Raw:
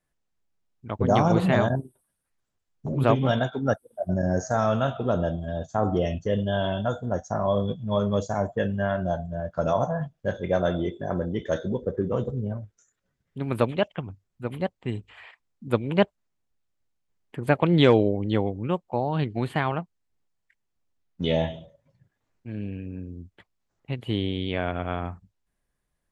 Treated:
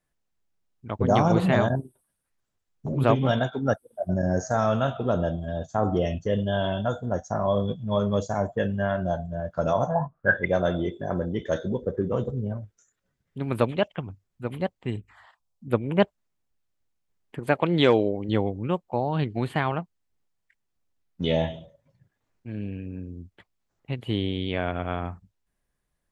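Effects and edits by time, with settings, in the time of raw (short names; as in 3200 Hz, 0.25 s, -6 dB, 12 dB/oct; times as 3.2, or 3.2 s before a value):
9.94–10.44 synth low-pass 800 Hz -> 2000 Hz, resonance Q 14
14.96–16 envelope phaser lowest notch 270 Hz, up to 4600 Hz, full sweep at -26.5 dBFS
17.39–18.29 low shelf 160 Hz -10 dB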